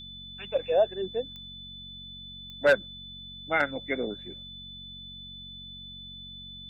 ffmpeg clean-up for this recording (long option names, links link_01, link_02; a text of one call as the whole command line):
ffmpeg -i in.wav -af "adeclick=threshold=4,bandreject=frequency=46.1:width_type=h:width=4,bandreject=frequency=92.2:width_type=h:width=4,bandreject=frequency=138.3:width_type=h:width=4,bandreject=frequency=184.4:width_type=h:width=4,bandreject=frequency=230.5:width_type=h:width=4,bandreject=frequency=3500:width=30" out.wav